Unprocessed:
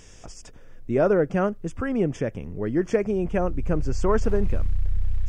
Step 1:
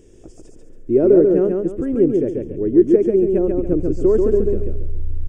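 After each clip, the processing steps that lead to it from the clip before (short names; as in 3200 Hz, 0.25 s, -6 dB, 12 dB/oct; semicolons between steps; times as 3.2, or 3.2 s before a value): EQ curve 200 Hz 0 dB, 350 Hz +14 dB, 780 Hz -9 dB, 1200 Hz -13 dB, 3200 Hz -10 dB, 5600 Hz -13 dB, 8900 Hz -3 dB; on a send: feedback echo 0.139 s, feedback 33%, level -3.5 dB; on the sum: gain -1 dB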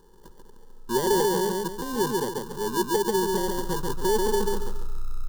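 sample-rate reducer 1300 Hz, jitter 0%; soft clip -10.5 dBFS, distortion -14 dB; fixed phaser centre 450 Hz, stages 8; gain -4.5 dB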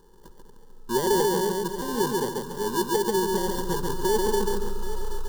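split-band echo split 390 Hz, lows 0.232 s, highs 0.779 s, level -12 dB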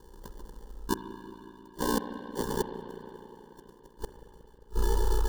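flipped gate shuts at -17 dBFS, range -39 dB; spring tank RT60 3.6 s, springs 36/45 ms, chirp 40 ms, DRR 7.5 dB; ring modulator 30 Hz; gain +5 dB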